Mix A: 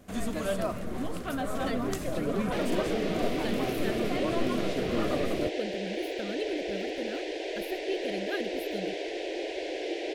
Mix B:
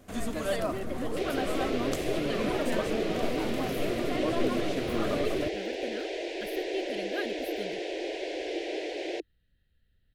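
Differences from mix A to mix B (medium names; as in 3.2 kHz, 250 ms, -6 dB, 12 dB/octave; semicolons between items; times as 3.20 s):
speech: entry -1.15 s; second sound: entry -1.35 s; master: add peaking EQ 190 Hz -6.5 dB 0.24 oct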